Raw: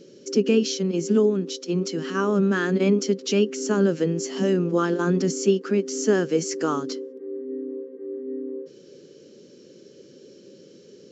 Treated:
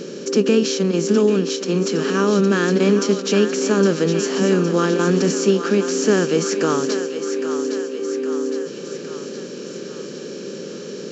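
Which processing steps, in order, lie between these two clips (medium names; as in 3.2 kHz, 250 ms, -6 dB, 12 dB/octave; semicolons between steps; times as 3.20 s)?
spectral levelling over time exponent 0.6; thinning echo 812 ms, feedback 63%, high-pass 610 Hz, level -8 dB; trim +1.5 dB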